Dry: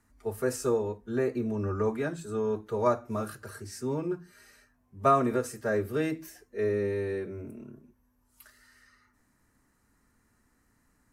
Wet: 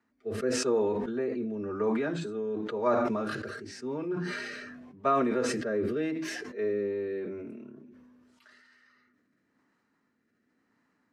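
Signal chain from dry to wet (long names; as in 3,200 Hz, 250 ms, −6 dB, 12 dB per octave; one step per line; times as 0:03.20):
Chebyshev band-pass filter 230–3,500 Hz, order 2
rotating-speaker cabinet horn 0.9 Hz
level that may fall only so fast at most 26 dB per second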